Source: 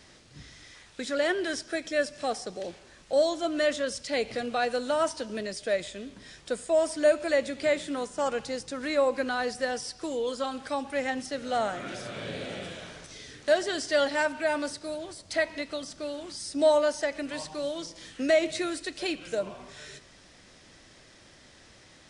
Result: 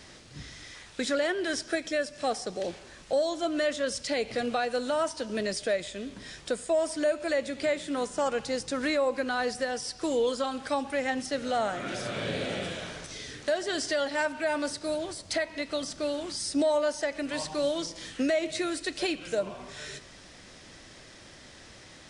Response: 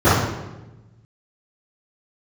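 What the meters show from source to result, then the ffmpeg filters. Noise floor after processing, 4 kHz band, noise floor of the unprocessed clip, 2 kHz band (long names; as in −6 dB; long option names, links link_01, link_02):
−51 dBFS, +1.0 dB, −55 dBFS, −1.0 dB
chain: -af "acontrast=36,alimiter=limit=-18dB:level=0:latency=1:release=458,volume=-1dB"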